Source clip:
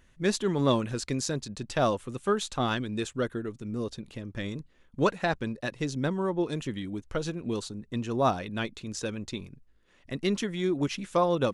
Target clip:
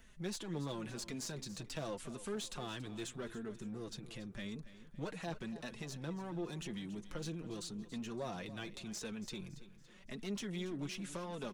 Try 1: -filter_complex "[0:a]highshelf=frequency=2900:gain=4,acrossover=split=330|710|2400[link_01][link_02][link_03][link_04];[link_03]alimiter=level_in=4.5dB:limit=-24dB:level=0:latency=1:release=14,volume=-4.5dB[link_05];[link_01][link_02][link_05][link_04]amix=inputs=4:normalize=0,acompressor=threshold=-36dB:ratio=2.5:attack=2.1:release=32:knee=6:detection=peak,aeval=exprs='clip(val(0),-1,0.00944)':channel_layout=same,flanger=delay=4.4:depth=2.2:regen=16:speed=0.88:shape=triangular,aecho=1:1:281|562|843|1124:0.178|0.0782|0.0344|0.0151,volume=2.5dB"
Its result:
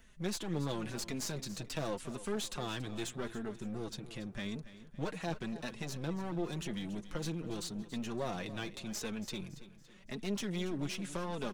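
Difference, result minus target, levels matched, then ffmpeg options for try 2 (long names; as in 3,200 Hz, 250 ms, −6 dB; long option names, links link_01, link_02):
downward compressor: peak gain reduction −5.5 dB
-filter_complex "[0:a]highshelf=frequency=2900:gain=4,acrossover=split=330|710|2400[link_01][link_02][link_03][link_04];[link_03]alimiter=level_in=4.5dB:limit=-24dB:level=0:latency=1:release=14,volume=-4.5dB[link_05];[link_01][link_02][link_05][link_04]amix=inputs=4:normalize=0,acompressor=threshold=-45dB:ratio=2.5:attack=2.1:release=32:knee=6:detection=peak,aeval=exprs='clip(val(0),-1,0.00944)':channel_layout=same,flanger=delay=4.4:depth=2.2:regen=16:speed=0.88:shape=triangular,aecho=1:1:281|562|843|1124:0.178|0.0782|0.0344|0.0151,volume=2.5dB"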